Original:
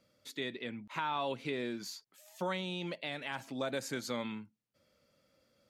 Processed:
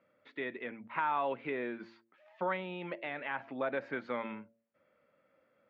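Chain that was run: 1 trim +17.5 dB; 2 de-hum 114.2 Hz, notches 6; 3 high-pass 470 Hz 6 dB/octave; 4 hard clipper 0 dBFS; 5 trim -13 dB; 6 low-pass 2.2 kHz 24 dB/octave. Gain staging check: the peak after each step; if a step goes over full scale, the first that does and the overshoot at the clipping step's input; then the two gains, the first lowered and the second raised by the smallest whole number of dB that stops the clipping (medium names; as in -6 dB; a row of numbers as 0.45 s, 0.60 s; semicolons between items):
-2.5 dBFS, -2.5 dBFS, -4.5 dBFS, -4.5 dBFS, -17.5 dBFS, -18.5 dBFS; nothing clips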